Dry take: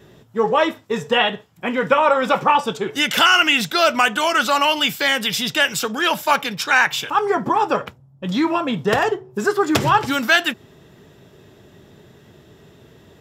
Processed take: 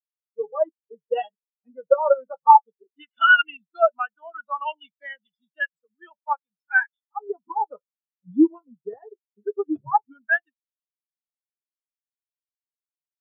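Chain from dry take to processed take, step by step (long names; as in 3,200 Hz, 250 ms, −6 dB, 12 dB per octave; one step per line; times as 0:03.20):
automatic gain control gain up to 6 dB
power curve on the samples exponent 1.4
every bin expanded away from the loudest bin 4 to 1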